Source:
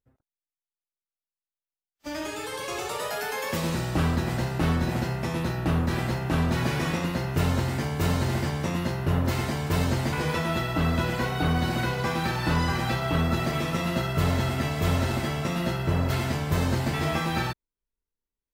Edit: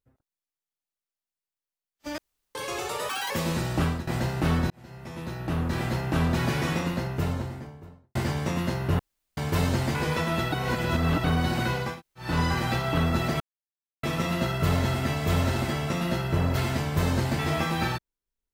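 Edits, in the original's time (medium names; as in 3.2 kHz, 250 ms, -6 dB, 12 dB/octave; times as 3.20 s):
2.18–2.55 s: room tone
3.09–3.48 s: speed 184%
3.99–4.25 s: fade out, to -15 dB
4.88–6.16 s: fade in
6.88–8.33 s: studio fade out
9.17–9.55 s: room tone
10.70–11.42 s: reverse
12.08–12.45 s: room tone, crossfade 0.24 s
13.58 s: insert silence 0.63 s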